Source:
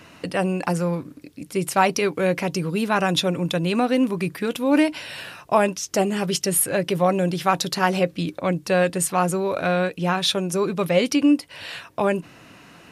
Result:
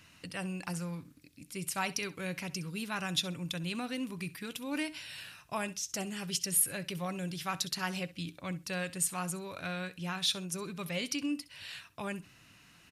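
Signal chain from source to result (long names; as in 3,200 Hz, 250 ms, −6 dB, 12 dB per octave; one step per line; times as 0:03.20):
parametric band 510 Hz −15 dB 2.9 octaves
repeating echo 65 ms, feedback 18%, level −18 dB
level −6.5 dB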